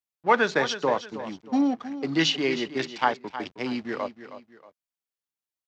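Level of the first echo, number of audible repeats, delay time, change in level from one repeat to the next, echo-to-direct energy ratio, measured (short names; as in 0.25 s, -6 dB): -12.5 dB, 2, 0.316 s, -9.0 dB, -12.0 dB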